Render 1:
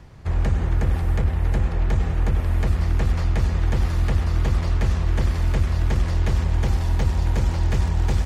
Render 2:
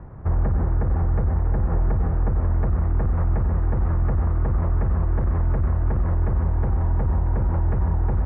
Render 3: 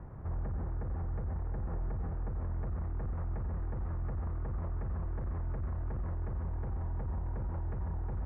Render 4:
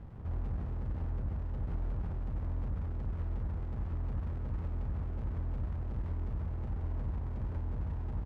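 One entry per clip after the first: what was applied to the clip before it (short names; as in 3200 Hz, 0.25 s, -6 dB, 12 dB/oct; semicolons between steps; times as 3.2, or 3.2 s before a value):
limiter -19.5 dBFS, peak gain reduction 10 dB; LPF 1400 Hz 24 dB/oct; gain +5.5 dB
limiter -23.5 dBFS, peak gain reduction 9.5 dB; gain -6.5 dB
echo 0.1 s -9.5 dB; reverb RT60 0.95 s, pre-delay 3 ms, DRR 7 dB; running maximum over 65 samples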